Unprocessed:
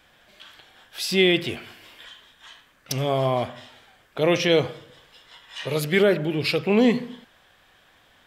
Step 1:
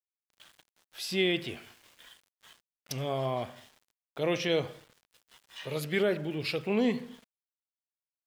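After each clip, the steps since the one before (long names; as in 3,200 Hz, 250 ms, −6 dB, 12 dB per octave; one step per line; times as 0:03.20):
centre clipping without the shift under −44.5 dBFS
level −9 dB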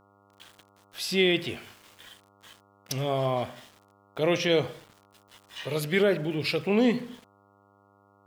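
hum with harmonics 100 Hz, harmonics 14, −66 dBFS −1 dB per octave
level +4.5 dB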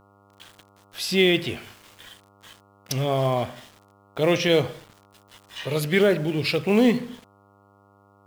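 low-shelf EQ 110 Hz +5.5 dB
in parallel at −5.5 dB: floating-point word with a short mantissa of 2 bits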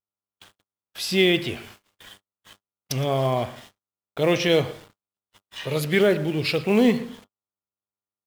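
single-tap delay 115 ms −19 dB
noise gate −46 dBFS, range −45 dB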